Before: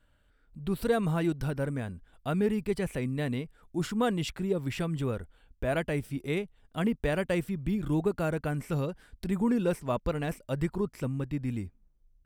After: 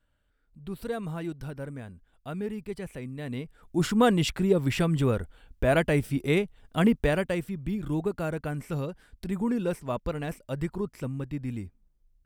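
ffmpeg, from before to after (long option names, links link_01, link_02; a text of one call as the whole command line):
ffmpeg -i in.wav -af "volume=6.5dB,afade=type=in:start_time=3.22:duration=0.68:silence=0.237137,afade=type=out:start_time=6.9:duration=0.46:silence=0.421697" out.wav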